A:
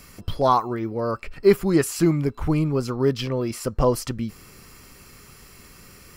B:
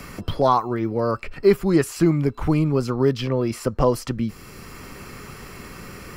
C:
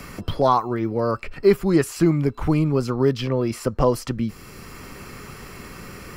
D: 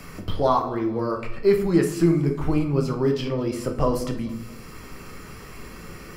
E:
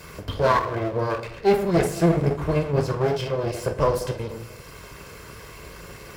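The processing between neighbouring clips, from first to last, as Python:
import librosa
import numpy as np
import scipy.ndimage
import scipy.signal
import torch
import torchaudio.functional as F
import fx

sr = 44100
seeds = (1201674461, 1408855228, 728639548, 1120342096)

y1 = fx.high_shelf(x, sr, hz=4800.0, db=-5.5)
y1 = fx.band_squash(y1, sr, depth_pct=40)
y1 = y1 * 10.0 ** (2.0 / 20.0)
y2 = y1
y3 = fx.echo_feedback(y2, sr, ms=220, feedback_pct=46, wet_db=-20.5)
y3 = fx.room_shoebox(y3, sr, seeds[0], volume_m3=88.0, walls='mixed', distance_m=0.58)
y3 = y3 * 10.0 ** (-4.5 / 20.0)
y4 = fx.lower_of_two(y3, sr, delay_ms=1.9)
y4 = scipy.signal.sosfilt(scipy.signal.butter(2, 45.0, 'highpass', fs=sr, output='sos'), y4)
y4 = y4 * 10.0 ** (1.5 / 20.0)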